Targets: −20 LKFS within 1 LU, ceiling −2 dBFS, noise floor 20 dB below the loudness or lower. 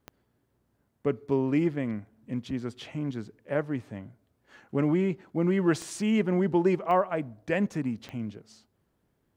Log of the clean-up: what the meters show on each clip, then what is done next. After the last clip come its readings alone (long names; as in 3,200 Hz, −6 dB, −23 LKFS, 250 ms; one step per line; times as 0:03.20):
number of clicks 4; integrated loudness −29.0 LKFS; sample peak −12.0 dBFS; target loudness −20.0 LKFS
→ click removal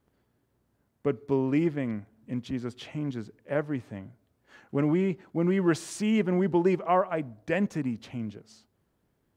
number of clicks 0; integrated loudness −29.0 LKFS; sample peak −12.0 dBFS; target loudness −20.0 LKFS
→ level +9 dB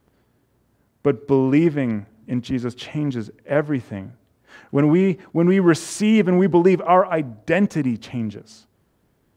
integrated loudness −20.0 LKFS; sample peak −3.0 dBFS; background noise floor −65 dBFS